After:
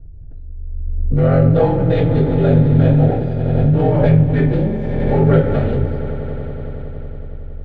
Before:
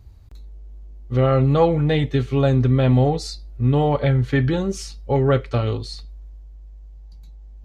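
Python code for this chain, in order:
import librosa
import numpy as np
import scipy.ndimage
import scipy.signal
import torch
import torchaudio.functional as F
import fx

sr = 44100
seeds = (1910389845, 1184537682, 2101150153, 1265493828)

p1 = fx.wiener(x, sr, points=41)
p2 = fx.lowpass(p1, sr, hz=1500.0, slope=6)
p3 = fx.low_shelf(p2, sr, hz=390.0, db=-5.5)
p4 = fx.notch(p3, sr, hz=1100.0, q=5.8)
p5 = fx.rider(p4, sr, range_db=10, speed_s=0.5)
p6 = p4 + (p5 * 10.0 ** (0.5 / 20.0))
p7 = p6 * np.sin(2.0 * np.pi * 23.0 * np.arange(len(p6)) / sr)
p8 = p7 + fx.echo_swell(p7, sr, ms=92, loudest=5, wet_db=-16.0, dry=0)
p9 = fx.room_shoebox(p8, sr, seeds[0], volume_m3=48.0, walls='mixed', distance_m=2.4)
p10 = fx.pre_swell(p9, sr, db_per_s=24.0)
y = p10 * 10.0 ** (-10.5 / 20.0)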